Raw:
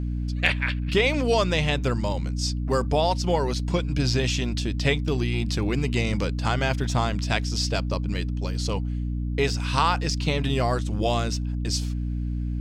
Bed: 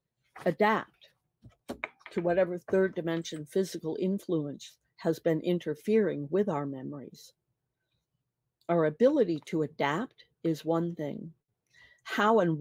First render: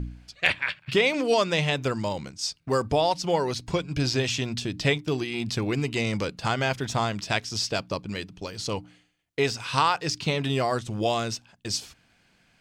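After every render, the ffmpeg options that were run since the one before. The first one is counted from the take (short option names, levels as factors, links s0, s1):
-af "bandreject=f=60:t=h:w=4,bandreject=f=120:t=h:w=4,bandreject=f=180:t=h:w=4,bandreject=f=240:t=h:w=4,bandreject=f=300:t=h:w=4"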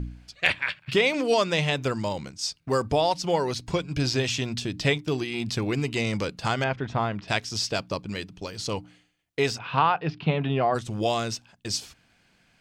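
-filter_complex "[0:a]asettb=1/sr,asplit=3[s0][s1][s2];[s0]atrim=end=6.644[s3];[s1]atrim=start=6.64:end=7.28,asetpts=PTS-STARTPTS,afade=t=in:d=0.004:c=qsin,afade=t=out:st=0.636:d=0.004:c=qsin,lowpass=2200[s4];[s2]atrim=start=7.276[s5];[s3][s4]acrossfade=d=0.004:c1=hsin:c2=qsin[s6];[s6][s5]acrossfade=d=0.004:c1=qsin:c2=hsin,asplit=3[s7][s8][s9];[s7]afade=t=out:st=9.57:d=0.02[s10];[s8]highpass=110,equalizer=f=160:t=q:w=4:g=7,equalizer=f=740:t=q:w=4:g=5,equalizer=f=2000:t=q:w=4:g=-4,lowpass=f=2900:w=0.5412,lowpass=f=2900:w=1.3066,afade=t=in:st=9.57:d=0.02,afade=t=out:st=10.74:d=0.02[s11];[s9]afade=t=in:st=10.74:d=0.02[s12];[s10][s11][s12]amix=inputs=3:normalize=0"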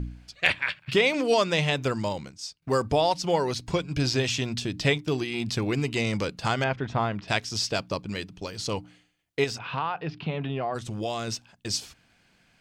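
-filter_complex "[0:a]asettb=1/sr,asplit=3[s0][s1][s2];[s0]atrim=end=9.444[s3];[s1]atrim=start=9.44:end=11.28,asetpts=PTS-STARTPTS,afade=t=in:d=0.004:c=qsin,afade=t=out:st=1.836:d=0.004:c=qsin,acompressor=threshold=0.0316:ratio=2:attack=3.2:release=140:knee=1:detection=peak[s4];[s2]atrim=start=11.276[s5];[s3][s4]acrossfade=d=0.004:c1=hsin:c2=qsin[s6];[s6][s5]acrossfade=d=0.004:c1=qsin:c2=hsin,asplit=2[s7][s8];[s7]atrim=end=2.62,asetpts=PTS-STARTPTS,afade=t=out:st=2.07:d=0.55:silence=0.16788[s9];[s8]atrim=start=2.62,asetpts=PTS-STARTPTS,afade=t=in:d=0.004:c=hsin:silence=0.16788[s10];[s9][s10]concat=n=2:v=0:a=1"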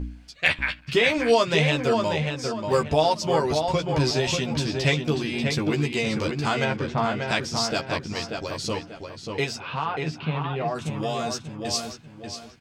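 -filter_complex "[0:a]asplit=2[s0][s1];[s1]adelay=13,volume=0.631[s2];[s0][s2]amix=inputs=2:normalize=0,asplit=2[s3][s4];[s4]adelay=588,lowpass=f=3200:p=1,volume=0.596,asplit=2[s5][s6];[s6]adelay=588,lowpass=f=3200:p=1,volume=0.34,asplit=2[s7][s8];[s8]adelay=588,lowpass=f=3200:p=1,volume=0.34,asplit=2[s9][s10];[s10]adelay=588,lowpass=f=3200:p=1,volume=0.34[s11];[s3][s5][s7][s9][s11]amix=inputs=5:normalize=0"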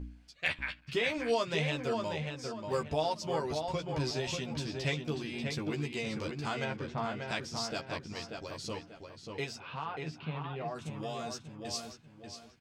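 -af "volume=0.282"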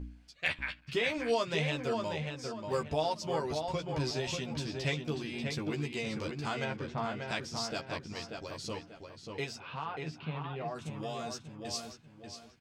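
-af anull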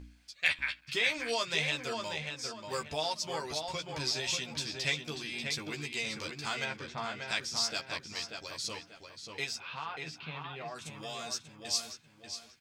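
-af "tiltshelf=f=1200:g=-8,bandreject=f=2900:w=18"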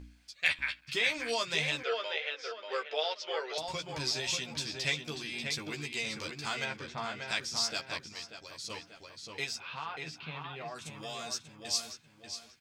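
-filter_complex "[0:a]asettb=1/sr,asplit=3[s0][s1][s2];[s0]atrim=end=1.834[s3];[s1]atrim=start=1.83:end=3.58,asetpts=PTS-STARTPTS,afade=t=in:d=0.004:c=qsin,afade=t=out:st=1.746:d=0.004:c=qsin,highpass=f=440:w=0.5412,highpass=f=440:w=1.3066,equalizer=f=450:t=q:w=4:g=10,equalizer=f=960:t=q:w=4:g=-6,equalizer=f=1400:t=q:w=4:g=6,equalizer=f=2000:t=q:w=4:g=4,equalizer=f=3100:t=q:w=4:g=6,equalizer=f=4500:t=q:w=4:g=-4,lowpass=f=4700:w=0.5412,lowpass=f=4700:w=1.3066[s4];[s2]atrim=start=3.576[s5];[s3][s4]acrossfade=d=0.004:c1=hsin:c2=qsin[s6];[s6][s5]acrossfade=d=0.004:c1=qsin:c2=hsin,asplit=3[s7][s8][s9];[s7]atrim=end=8.092[s10];[s8]atrim=start=8.088:end=8.702,asetpts=PTS-STARTPTS,volume=0.562[s11];[s9]atrim=start=8.698[s12];[s10][s11]acrossfade=d=0.004:c1=hsin:c2=hsin[s13];[s13][s12]acrossfade=d=0.004:c1=hsin:c2=hsin"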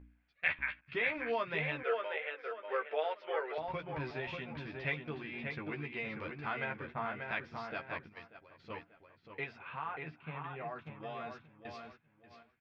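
-af "agate=range=0.398:threshold=0.00562:ratio=16:detection=peak,lowpass=f=2200:w=0.5412,lowpass=f=2200:w=1.3066"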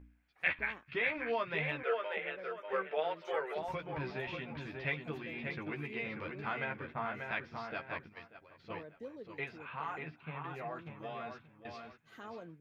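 -filter_complex "[1:a]volume=0.0668[s0];[0:a][s0]amix=inputs=2:normalize=0"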